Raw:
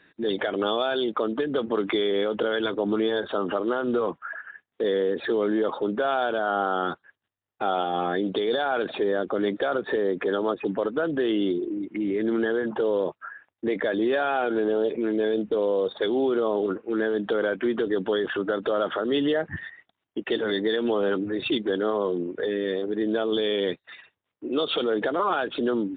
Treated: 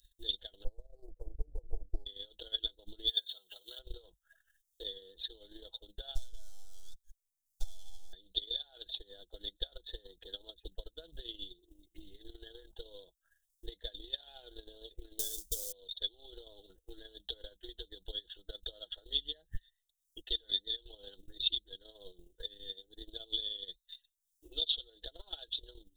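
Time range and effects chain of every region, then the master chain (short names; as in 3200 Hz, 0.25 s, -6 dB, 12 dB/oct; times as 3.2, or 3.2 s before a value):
0.64–2.06 G.711 law mismatch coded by mu + elliptic low-pass 540 Hz, stop band 50 dB + Doppler distortion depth 0.35 ms
3.07–3.79 tilt +4 dB/oct + notch comb 290 Hz
6.15–8.13 half-wave gain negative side -3 dB + compressor 20:1, threshold -33 dBFS
15.19–15.72 G.711 law mismatch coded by mu + notch 2100 Hz, Q 5.5
whole clip: inverse Chebyshev band-stop 110–2500 Hz, stop band 50 dB; comb 6.1 ms, depth 48%; transient shaper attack +10 dB, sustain -10 dB; gain +17.5 dB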